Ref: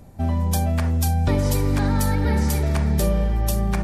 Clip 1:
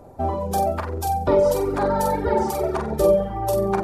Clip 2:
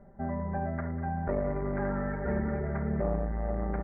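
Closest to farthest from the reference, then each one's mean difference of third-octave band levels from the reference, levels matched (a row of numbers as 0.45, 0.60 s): 1, 2; 6.5, 10.0 dB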